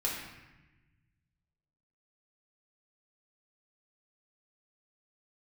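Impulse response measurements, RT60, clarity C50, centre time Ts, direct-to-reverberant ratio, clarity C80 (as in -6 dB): 1.0 s, 2.0 dB, 60 ms, -5.0 dB, 4.5 dB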